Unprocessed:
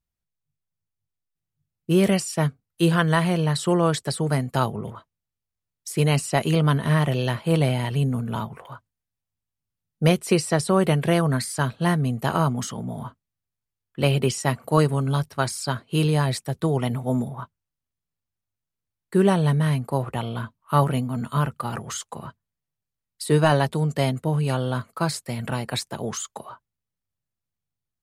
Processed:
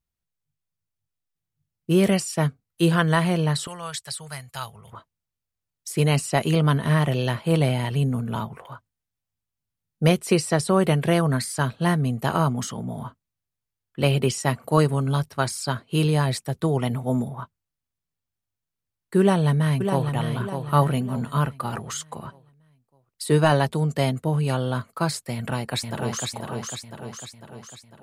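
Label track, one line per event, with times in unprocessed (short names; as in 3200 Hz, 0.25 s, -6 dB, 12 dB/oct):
3.670000	4.930000	passive tone stack bass-middle-treble 10-0-10
19.200000	20.130000	echo throw 0.6 s, feedback 40%, level -7 dB
25.330000	26.260000	echo throw 0.5 s, feedback 55%, level -3.5 dB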